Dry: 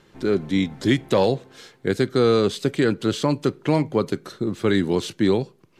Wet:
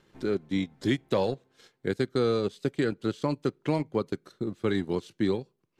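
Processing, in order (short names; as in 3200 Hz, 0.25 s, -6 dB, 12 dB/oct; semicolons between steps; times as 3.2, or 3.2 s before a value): transient shaper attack +2 dB, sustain -11 dB; gain -8 dB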